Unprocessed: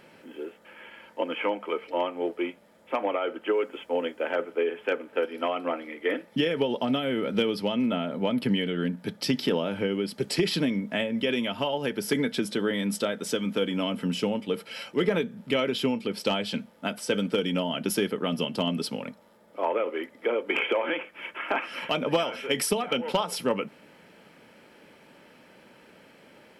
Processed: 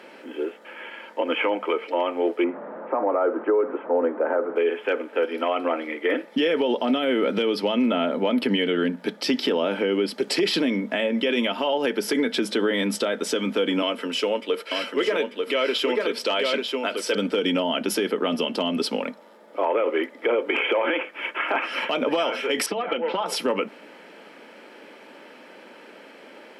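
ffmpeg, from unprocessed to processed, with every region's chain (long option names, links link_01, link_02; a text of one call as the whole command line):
ffmpeg -i in.wav -filter_complex "[0:a]asettb=1/sr,asplit=3[link_01][link_02][link_03];[link_01]atrim=end=2.444[link_04];[link_02]atrim=start=2.44:end=4.56,asetpts=PTS-STARTPTS,afade=type=in:duration=0.004:curve=qsin,afade=type=out:start_time=2.116:duration=0.004:curve=qsin,aeval=exprs='val(0)+0.5*0.0119*sgn(val(0))':channel_layout=same,lowpass=frequency=1400:width=0.5412,lowpass=frequency=1400:width=1.3066[link_05];[link_03]atrim=start=4.556[link_06];[link_04][link_05]acrossfade=duration=0.004:curve1=hsin:curve2=qsin[link_07];[link_07][link_06]acrossfade=duration=0.004:curve1=qsin:curve2=hsin,asettb=1/sr,asplit=3[link_08][link_09][link_10];[link_08]atrim=end=13.824[link_11];[link_09]atrim=start=13.82:end=17.15,asetpts=PTS-STARTPTS,afade=type=in:duration=0.004:curve=qsin,afade=type=out:start_time=3.326:duration=0.004:curve=qsin,highpass=390,bandreject=frequency=800:width=6,aecho=1:1:892:0.531,atrim=end_sample=146853[link_12];[link_10]atrim=start=17.146[link_13];[link_11][link_12]acrossfade=duration=0.004:curve1=hsin:curve2=qsin[link_14];[link_14][link_13]acrossfade=duration=0.004:curve1=qsin:curve2=hsin,asettb=1/sr,asplit=3[link_15][link_16][link_17];[link_15]atrim=end=22.664[link_18];[link_16]atrim=start=22.66:end=23.26,asetpts=PTS-STARTPTS,afade=type=in:duration=0.004:curve=qsin,afade=type=out:start_time=0.596:duration=0.004:curve=qsin,lowpass=2800,acompressor=threshold=-31dB:ratio=4:attack=3.2:release=140:knee=1:detection=peak,aecho=1:1:6:0.49,atrim=end_sample=26460[link_19];[link_17]atrim=start=23.256[link_20];[link_18][link_19]acrossfade=duration=0.004:curve1=hsin:curve2=qsin[link_21];[link_21][link_20]acrossfade=duration=0.004:curve1=qsin:curve2=hsin,highpass=frequency=250:width=0.5412,highpass=frequency=250:width=1.3066,highshelf=frequency=7600:gain=-11,alimiter=limit=-22.5dB:level=0:latency=1:release=61,volume=9dB" out.wav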